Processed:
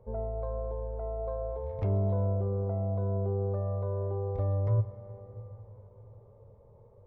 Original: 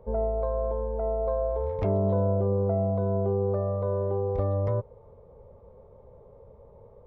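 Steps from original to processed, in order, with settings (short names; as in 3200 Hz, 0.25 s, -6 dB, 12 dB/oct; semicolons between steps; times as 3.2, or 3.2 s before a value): bell 110 Hz +11 dB 0.56 oct; resonator 360 Hz, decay 0.85 s, mix 60%; reverb RT60 4.7 s, pre-delay 28 ms, DRR 12 dB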